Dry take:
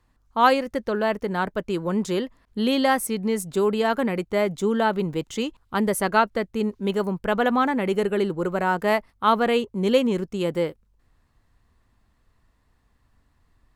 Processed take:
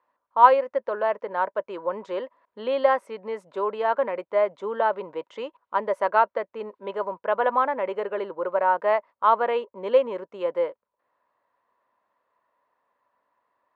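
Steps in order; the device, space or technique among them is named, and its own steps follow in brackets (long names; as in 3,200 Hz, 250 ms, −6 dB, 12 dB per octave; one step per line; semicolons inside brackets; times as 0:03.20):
tin-can telephone (band-pass filter 550–2,100 Hz; hollow resonant body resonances 570/970 Hz, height 12 dB, ringing for 25 ms)
level −3.5 dB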